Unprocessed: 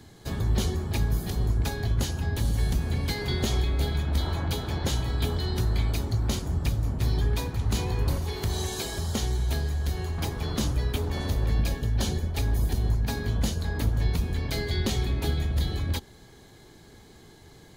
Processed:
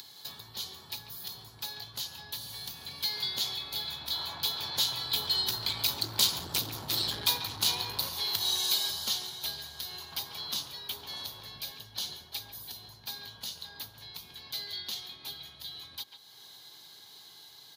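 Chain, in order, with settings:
source passing by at 0:06.68, 6 m/s, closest 5.2 metres
graphic EQ with 10 bands 125 Hz +11 dB, 1,000 Hz +8 dB, 2,000 Hz −5 dB, 4,000 Hz +11 dB, 8,000 Hz −12 dB
far-end echo of a speakerphone 140 ms, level −11 dB
in parallel at −3 dB: upward compression, threshold −29 dBFS
on the sum: mains-hum notches 60/120 Hz
sine wavefolder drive 7 dB, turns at −5.5 dBFS
first difference
notch filter 1,200 Hz, Q 21

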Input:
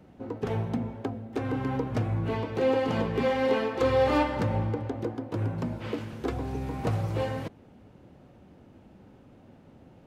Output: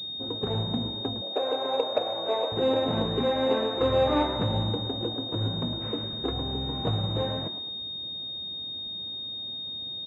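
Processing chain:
0:01.21–0:02.52: high-pass with resonance 570 Hz, resonance Q 4.9
echo with shifted repeats 109 ms, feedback 39%, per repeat +88 Hz, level −13 dB
switching amplifier with a slow clock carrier 3,700 Hz

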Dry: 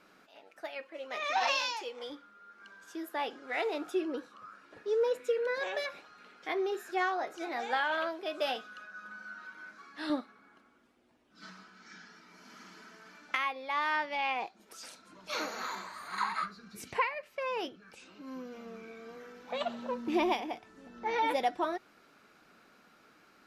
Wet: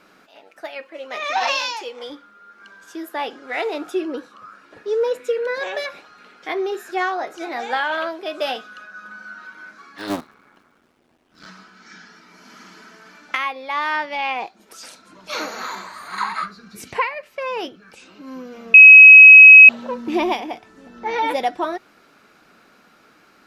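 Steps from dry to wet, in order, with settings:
0:09.98–0:11.47: sub-harmonics by changed cycles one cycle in 3, muted
0:18.74–0:19.69: beep over 2,550 Hz −9.5 dBFS
level +8.5 dB

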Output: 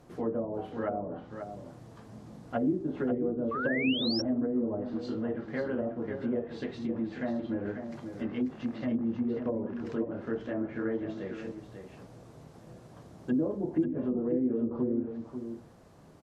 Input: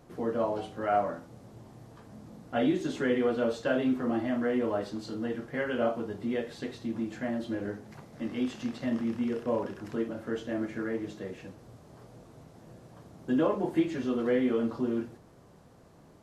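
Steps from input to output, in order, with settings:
treble cut that deepens with the level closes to 380 Hz, closed at −25 dBFS
single-tap delay 540 ms −8 dB
sound drawn into the spectrogram rise, 0:03.51–0:04.22, 1,100–5,700 Hz −34 dBFS

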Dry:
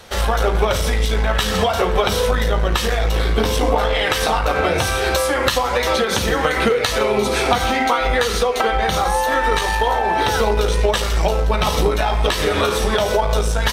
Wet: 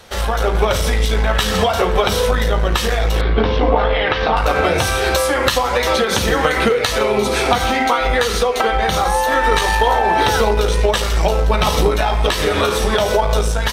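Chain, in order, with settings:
0:03.21–0:04.37: Bessel low-pass filter 2,700 Hz, order 8
automatic gain control
level −1 dB

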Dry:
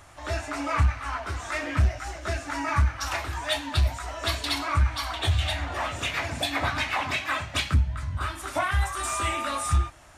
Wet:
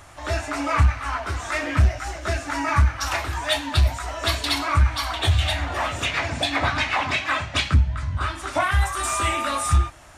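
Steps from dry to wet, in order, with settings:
0:06.05–0:08.60: low-pass filter 7,600 Hz 12 dB per octave
level +4.5 dB

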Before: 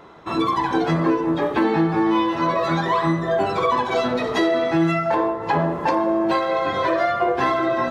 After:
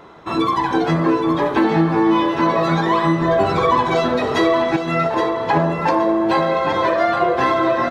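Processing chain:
0:03.21–0:03.95: low-shelf EQ 120 Hz +10 dB
0:04.76–0:05.17: compressor whose output falls as the input rises −22 dBFS, ratio −0.5
repeating echo 820 ms, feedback 32%, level −8 dB
level +2.5 dB

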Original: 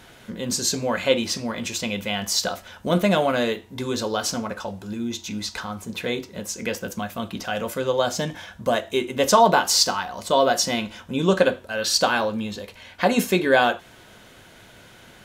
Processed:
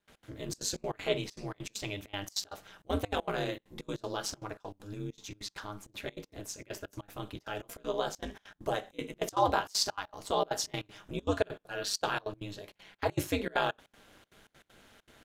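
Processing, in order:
gate pattern ".x.xxxx.xx" 197 BPM −24 dB
ring modulation 100 Hz
level −8 dB

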